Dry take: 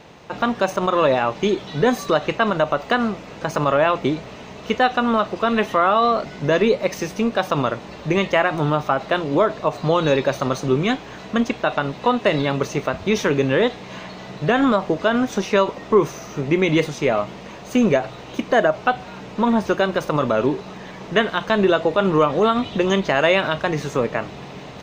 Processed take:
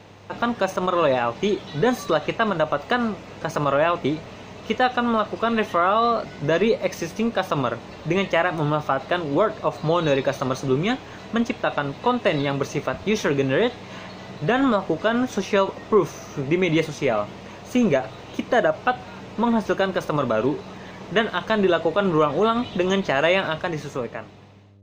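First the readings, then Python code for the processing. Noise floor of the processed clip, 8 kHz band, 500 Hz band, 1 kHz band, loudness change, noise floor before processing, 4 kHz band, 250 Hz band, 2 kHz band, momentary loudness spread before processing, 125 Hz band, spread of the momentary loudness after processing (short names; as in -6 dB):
-40 dBFS, -2.5 dB, -2.5 dB, -2.5 dB, -2.5 dB, -38 dBFS, -2.5 dB, -2.5 dB, -2.5 dB, 10 LU, -2.5 dB, 10 LU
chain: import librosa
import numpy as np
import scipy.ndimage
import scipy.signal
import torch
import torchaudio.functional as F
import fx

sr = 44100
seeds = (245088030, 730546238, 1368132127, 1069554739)

y = fx.fade_out_tail(x, sr, length_s=1.43)
y = fx.dmg_buzz(y, sr, base_hz=100.0, harmonics=6, level_db=-49.0, tilt_db=-8, odd_only=False)
y = y * 10.0 ** (-2.5 / 20.0)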